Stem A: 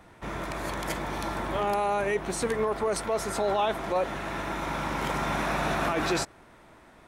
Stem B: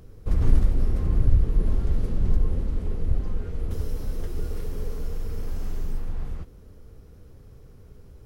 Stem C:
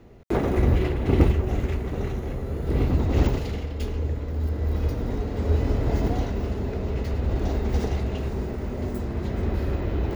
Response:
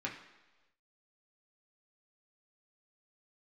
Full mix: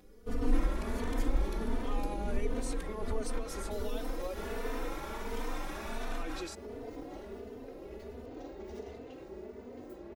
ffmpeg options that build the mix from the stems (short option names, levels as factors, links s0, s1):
-filter_complex "[0:a]adelay=300,volume=0.75[s0];[1:a]aecho=1:1:4.1:0.83,volume=0.75[s1];[2:a]equalizer=f=500:w=1.5:g=5,adelay=950,volume=0.2[s2];[s0][s2]amix=inputs=2:normalize=0,acrossover=split=160|3000[s3][s4][s5];[s4]acompressor=threshold=0.0224:ratio=6[s6];[s3][s6][s5]amix=inputs=3:normalize=0,alimiter=level_in=1.88:limit=0.0631:level=0:latency=1:release=67,volume=0.531,volume=1[s7];[s1][s7]amix=inputs=2:normalize=0,lowshelf=f=200:t=q:w=1.5:g=-10.5,asplit=2[s8][s9];[s9]adelay=3.2,afreqshift=1.4[s10];[s8][s10]amix=inputs=2:normalize=1"